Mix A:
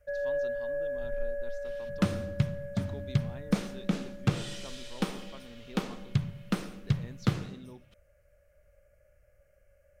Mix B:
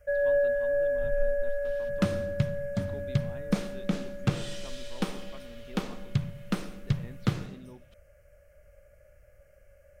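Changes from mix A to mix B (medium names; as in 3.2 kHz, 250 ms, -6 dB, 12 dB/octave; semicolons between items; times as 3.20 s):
speech: add low-pass 3.4 kHz 24 dB/octave; first sound +6.5 dB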